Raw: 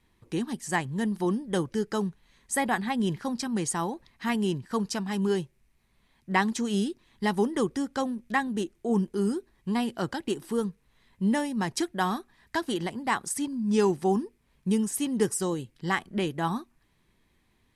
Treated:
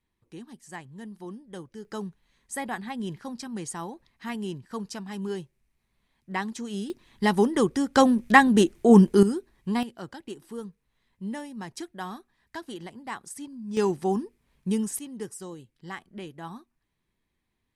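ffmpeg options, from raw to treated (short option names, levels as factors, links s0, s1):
-af "asetnsamples=n=441:p=0,asendcmd='1.85 volume volume -6dB;6.9 volume volume 4dB;7.95 volume volume 11dB;9.23 volume volume 1dB;9.83 volume volume -9dB;13.77 volume volume -1dB;14.99 volume volume -11dB',volume=0.224"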